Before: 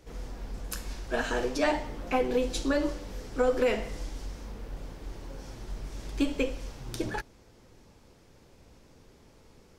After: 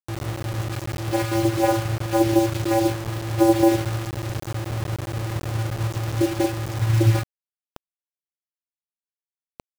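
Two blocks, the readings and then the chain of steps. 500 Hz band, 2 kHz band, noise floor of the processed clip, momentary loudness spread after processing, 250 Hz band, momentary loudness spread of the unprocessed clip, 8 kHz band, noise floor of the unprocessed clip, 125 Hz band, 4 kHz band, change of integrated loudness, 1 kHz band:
+5.5 dB, +3.0 dB, below −85 dBFS, 10 LU, +11.0 dB, 16 LU, +9.0 dB, −58 dBFS, +20.0 dB, +6.5 dB, +8.5 dB, +9.0 dB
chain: low-shelf EQ 140 Hz +11.5 dB
in parallel at −7.5 dB: sample-rate reduction 4,400 Hz
on the sum: channel vocoder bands 8, square 112 Hz
bit reduction 6 bits
level +6 dB

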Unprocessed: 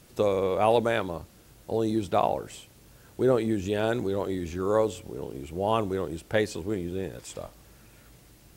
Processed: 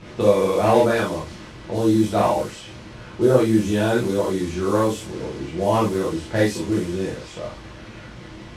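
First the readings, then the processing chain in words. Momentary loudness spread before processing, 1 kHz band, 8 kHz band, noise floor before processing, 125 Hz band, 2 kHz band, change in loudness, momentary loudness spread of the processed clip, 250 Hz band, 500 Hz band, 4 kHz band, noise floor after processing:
16 LU, +5.5 dB, +9.0 dB, −55 dBFS, +9.0 dB, +6.5 dB, +7.0 dB, 21 LU, +9.0 dB, +6.0 dB, +6.5 dB, −40 dBFS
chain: linear delta modulator 64 kbit/s, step −37.5 dBFS
low-pass that shuts in the quiet parts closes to 2,400 Hz, open at −23.5 dBFS
reverb whose tail is shaped and stops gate 90 ms flat, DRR −6 dB

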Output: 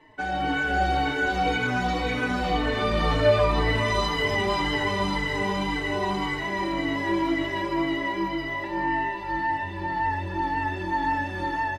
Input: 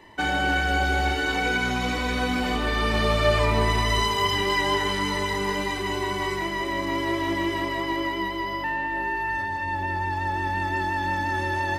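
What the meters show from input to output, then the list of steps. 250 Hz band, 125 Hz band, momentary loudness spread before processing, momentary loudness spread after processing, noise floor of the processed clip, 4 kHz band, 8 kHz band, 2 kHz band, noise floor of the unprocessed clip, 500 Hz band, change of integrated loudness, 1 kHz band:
+1.0 dB, −1.5 dB, 5 LU, 5 LU, −33 dBFS, −3.5 dB, −7.0 dB, −2.0 dB, −29 dBFS, +1.0 dB, −1.0 dB, −0.5 dB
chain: low-pass filter 2,800 Hz 6 dB per octave
comb filter 6.5 ms, depth 40%
feedback delay with all-pass diffusion 698 ms, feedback 56%, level −10 dB
automatic gain control gain up to 5 dB
barber-pole flanger 4 ms −1.9 Hz
level −2 dB

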